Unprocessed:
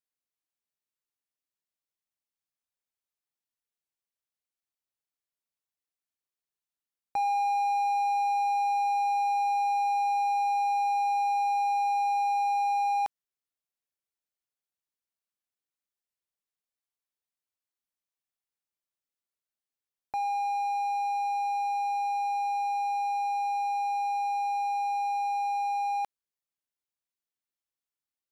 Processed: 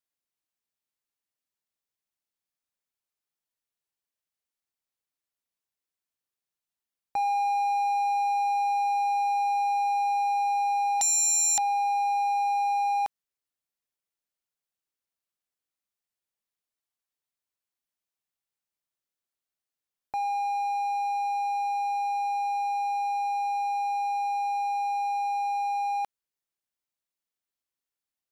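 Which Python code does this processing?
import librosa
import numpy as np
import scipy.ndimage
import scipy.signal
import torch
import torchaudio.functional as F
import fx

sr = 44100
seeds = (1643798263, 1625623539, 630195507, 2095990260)

y = fx.fold_sine(x, sr, drive_db=19, ceiling_db=-21.5, at=(11.01, 11.58))
y = y * librosa.db_to_amplitude(1.0)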